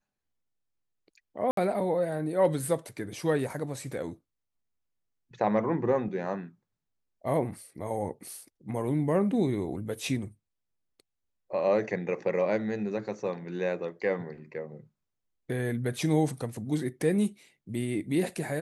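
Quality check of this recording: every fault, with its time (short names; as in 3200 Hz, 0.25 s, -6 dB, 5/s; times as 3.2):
1.51–1.57 gap 63 ms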